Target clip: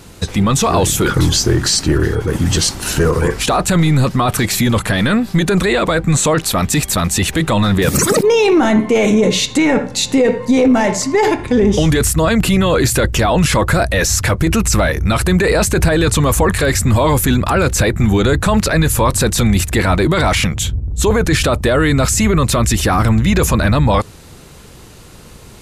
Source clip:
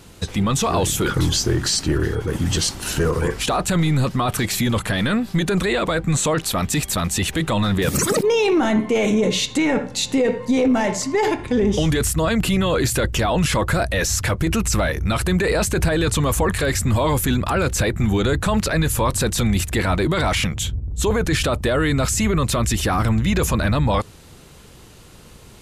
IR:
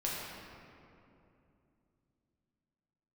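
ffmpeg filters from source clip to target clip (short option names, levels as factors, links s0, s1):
-af "equalizer=f=3100:w=3.6:g=-2.5,volume=2"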